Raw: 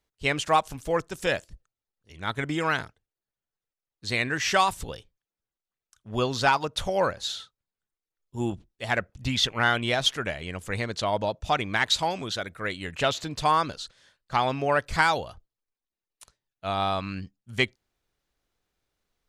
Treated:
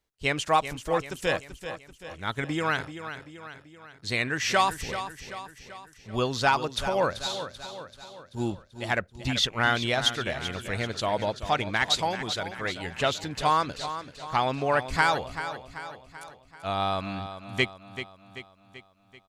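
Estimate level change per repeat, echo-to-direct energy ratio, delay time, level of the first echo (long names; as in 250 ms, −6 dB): −5.5 dB, −9.5 dB, 386 ms, −11.0 dB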